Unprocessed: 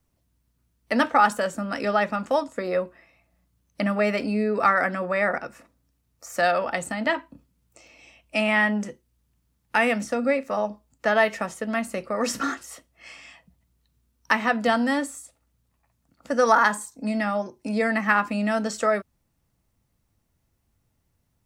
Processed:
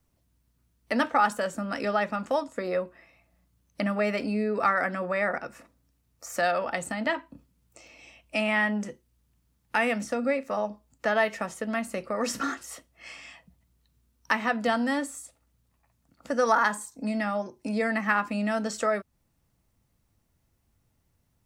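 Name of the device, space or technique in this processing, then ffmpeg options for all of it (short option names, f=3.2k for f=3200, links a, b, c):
parallel compression: -filter_complex "[0:a]asplit=2[a][b];[b]acompressor=threshold=-33dB:ratio=6,volume=-0.5dB[c];[a][c]amix=inputs=2:normalize=0,volume=-5.5dB"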